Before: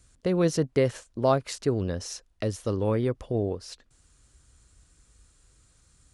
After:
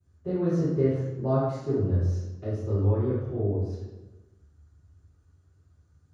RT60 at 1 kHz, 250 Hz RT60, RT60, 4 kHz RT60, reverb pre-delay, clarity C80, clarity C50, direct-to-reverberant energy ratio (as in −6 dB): 1.0 s, 1.5 s, 1.1 s, 0.75 s, 3 ms, 2.5 dB, −1.0 dB, −18.0 dB